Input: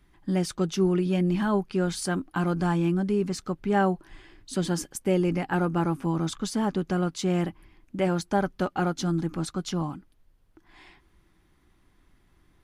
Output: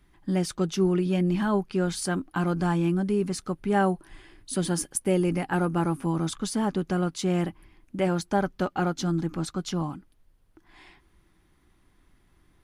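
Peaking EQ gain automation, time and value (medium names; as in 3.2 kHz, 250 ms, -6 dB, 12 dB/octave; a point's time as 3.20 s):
peaking EQ 9.8 kHz 0.23 oct
2.58 s +2.5 dB
3.57 s +12.5 dB
6.09 s +12.5 dB
6.66 s +5.5 dB
7.97 s +5.5 dB
8.66 s -2 dB
9.50 s -2 dB
9.90 s +4 dB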